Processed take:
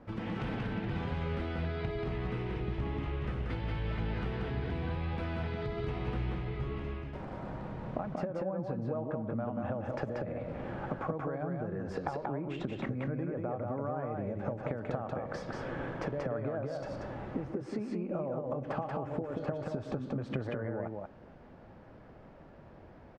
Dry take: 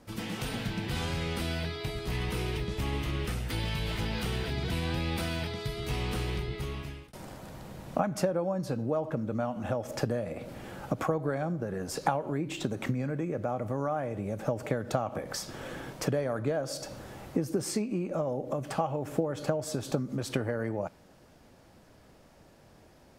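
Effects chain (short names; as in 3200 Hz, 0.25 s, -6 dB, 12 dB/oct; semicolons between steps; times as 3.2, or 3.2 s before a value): LPF 1800 Hz 12 dB/oct; compressor, threshold -36 dBFS, peak gain reduction 14 dB; echo 0.184 s -3 dB; gain +2.5 dB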